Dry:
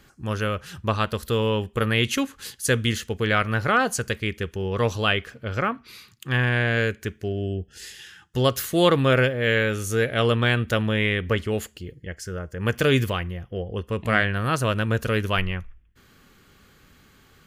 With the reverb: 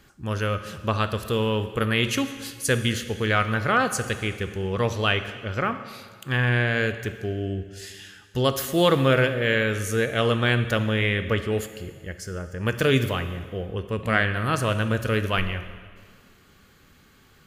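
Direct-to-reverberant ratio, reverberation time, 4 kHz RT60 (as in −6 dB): 9.5 dB, 1.8 s, 1.7 s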